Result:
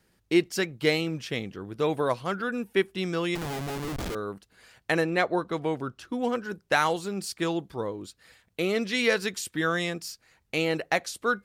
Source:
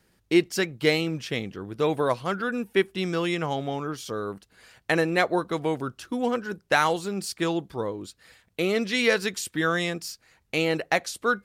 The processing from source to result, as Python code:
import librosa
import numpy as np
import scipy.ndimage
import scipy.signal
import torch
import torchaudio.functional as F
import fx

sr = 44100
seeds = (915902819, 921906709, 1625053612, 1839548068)

y = fx.schmitt(x, sr, flips_db=-33.5, at=(3.35, 4.15))
y = fx.high_shelf(y, sr, hz=7300.0, db=-9.0, at=(5.04, 6.22))
y = y * librosa.db_to_amplitude(-2.0)